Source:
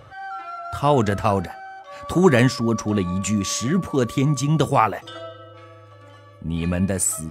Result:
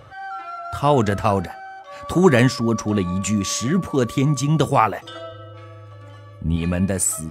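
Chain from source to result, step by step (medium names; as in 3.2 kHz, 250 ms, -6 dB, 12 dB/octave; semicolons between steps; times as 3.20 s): 5.32–6.56 s: bass shelf 120 Hz +11 dB; trim +1 dB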